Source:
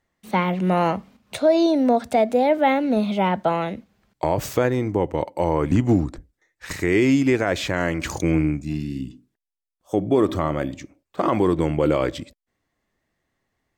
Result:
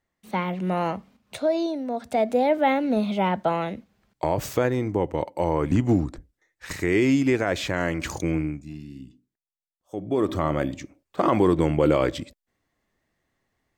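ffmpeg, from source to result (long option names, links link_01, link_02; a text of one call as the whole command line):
ffmpeg -i in.wav -af "volume=16.5dB,afade=type=out:start_time=1.46:duration=0.41:silence=0.421697,afade=type=in:start_time=1.87:duration=0.42:silence=0.298538,afade=type=out:start_time=8.05:duration=0.68:silence=0.354813,afade=type=in:start_time=9.95:duration=0.6:silence=0.266073" out.wav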